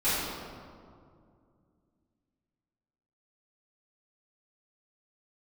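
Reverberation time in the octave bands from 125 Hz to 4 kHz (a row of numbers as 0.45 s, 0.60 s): 3.2 s, 3.1 s, 2.4 s, 2.1 s, 1.4 s, 1.1 s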